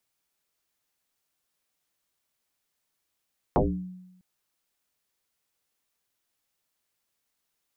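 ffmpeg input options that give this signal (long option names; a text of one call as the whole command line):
ffmpeg -f lavfi -i "aevalsrc='0.15*pow(10,-3*t/0.95)*sin(2*PI*183*t+8.5*pow(10,-3*t/0.46)*sin(2*PI*0.59*183*t))':duration=0.65:sample_rate=44100" out.wav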